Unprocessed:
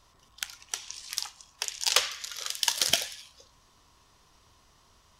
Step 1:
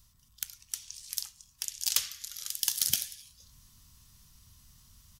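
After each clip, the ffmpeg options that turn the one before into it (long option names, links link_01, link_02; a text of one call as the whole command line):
ffmpeg -i in.wav -af "areverse,acompressor=mode=upward:threshold=-46dB:ratio=2.5,areverse,firequalizer=gain_entry='entry(120,0);entry(220,-4);entry(340,-20);entry(530,-23);entry(1400,-14);entry(2500,-11);entry(4400,-6);entry(14000,10)':delay=0.05:min_phase=1" out.wav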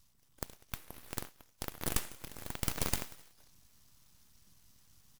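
ffmpeg -i in.wav -af "aeval=exprs='abs(val(0))':channel_layout=same,volume=-4dB" out.wav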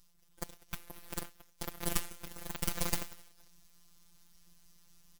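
ffmpeg -i in.wav -af "afftfilt=real='hypot(re,im)*cos(PI*b)':imag='0':win_size=1024:overlap=0.75,volume=3.5dB" out.wav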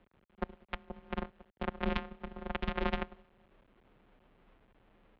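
ffmpeg -i in.wav -af "adynamicsmooth=sensitivity=4.5:basefreq=590,acrusher=bits=9:dc=4:mix=0:aa=0.000001,highpass=frequency=180:width_type=q:width=0.5412,highpass=frequency=180:width_type=q:width=1.307,lowpass=frequency=3500:width_type=q:width=0.5176,lowpass=frequency=3500:width_type=q:width=0.7071,lowpass=frequency=3500:width_type=q:width=1.932,afreqshift=-140,volume=10.5dB" out.wav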